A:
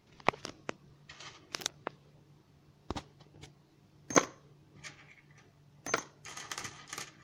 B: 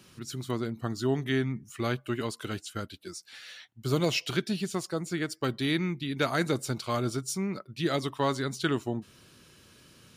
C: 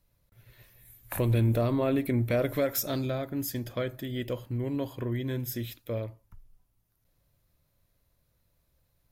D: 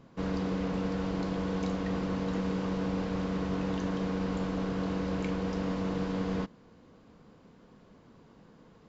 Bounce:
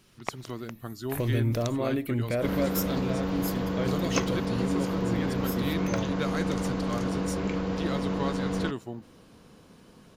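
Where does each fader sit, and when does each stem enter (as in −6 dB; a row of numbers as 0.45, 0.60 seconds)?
−5.0, −6.0, −2.0, +2.5 decibels; 0.00, 0.00, 0.00, 2.25 seconds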